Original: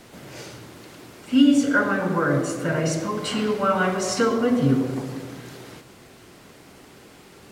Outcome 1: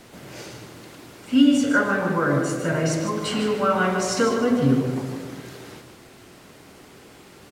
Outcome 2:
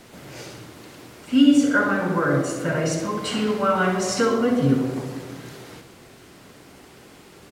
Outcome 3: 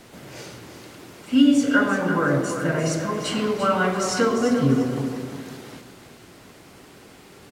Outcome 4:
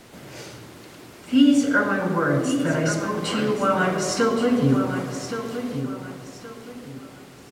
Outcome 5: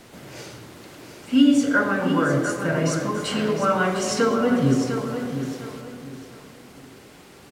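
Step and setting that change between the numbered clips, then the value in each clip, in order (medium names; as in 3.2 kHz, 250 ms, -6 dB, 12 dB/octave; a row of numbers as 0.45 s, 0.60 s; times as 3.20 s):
feedback delay, time: 152 ms, 65 ms, 345 ms, 1121 ms, 705 ms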